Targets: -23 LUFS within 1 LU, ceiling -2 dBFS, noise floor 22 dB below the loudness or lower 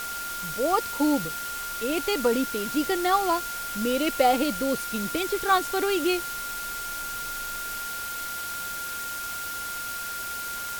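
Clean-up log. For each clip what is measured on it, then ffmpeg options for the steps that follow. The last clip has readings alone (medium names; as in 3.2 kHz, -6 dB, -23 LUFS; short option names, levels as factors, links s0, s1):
steady tone 1.4 kHz; tone level -33 dBFS; noise floor -34 dBFS; noise floor target -49 dBFS; loudness -27.0 LUFS; peak level -9.0 dBFS; loudness target -23.0 LUFS
-> -af "bandreject=f=1400:w=30"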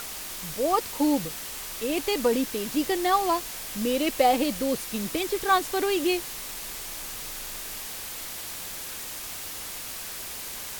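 steady tone not found; noise floor -37 dBFS; noise floor target -50 dBFS
-> -af "afftdn=nr=13:nf=-37"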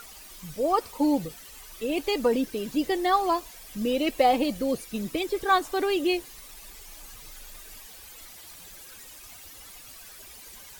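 noise floor -47 dBFS; noise floor target -49 dBFS
-> -af "afftdn=nr=6:nf=-47"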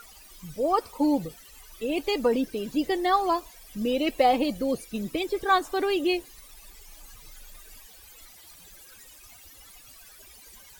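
noise floor -51 dBFS; loudness -26.5 LUFS; peak level -9.5 dBFS; loudness target -23.0 LUFS
-> -af "volume=1.5"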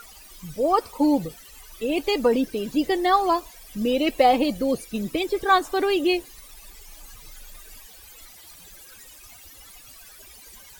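loudness -23.0 LUFS; peak level -6.0 dBFS; noise floor -47 dBFS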